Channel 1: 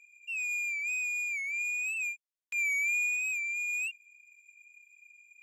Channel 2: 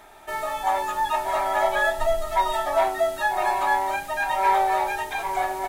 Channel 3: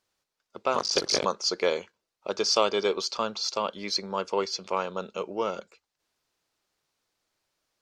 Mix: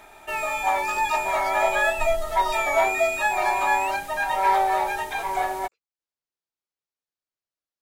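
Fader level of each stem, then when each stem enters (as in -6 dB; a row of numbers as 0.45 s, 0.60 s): +1.0 dB, 0.0 dB, -19.5 dB; 0.00 s, 0.00 s, 0.00 s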